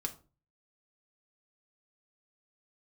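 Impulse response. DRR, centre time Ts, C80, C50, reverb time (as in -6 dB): 3.0 dB, 6 ms, 20.5 dB, 15.0 dB, 0.35 s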